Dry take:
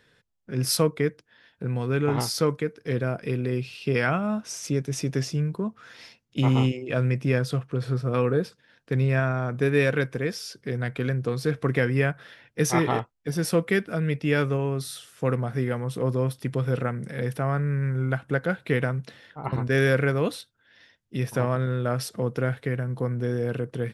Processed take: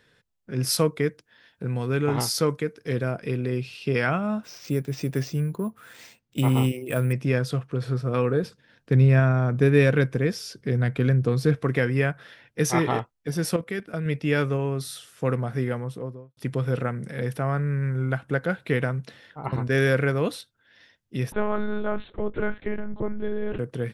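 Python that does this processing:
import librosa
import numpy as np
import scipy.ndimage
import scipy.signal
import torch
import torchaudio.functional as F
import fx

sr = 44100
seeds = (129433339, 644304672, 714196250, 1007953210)

y = fx.high_shelf(x, sr, hz=5800.0, db=5.0, at=(0.78, 3.11))
y = fx.resample_bad(y, sr, factor=4, down='filtered', up='hold', at=(4.43, 7.13))
y = fx.low_shelf(y, sr, hz=320.0, db=7.5, at=(8.43, 11.55))
y = fx.level_steps(y, sr, step_db=14, at=(13.56, 14.06))
y = fx.studio_fade_out(y, sr, start_s=15.64, length_s=0.73)
y = fx.lpc_monotone(y, sr, seeds[0], pitch_hz=210.0, order=10, at=(21.32, 23.59))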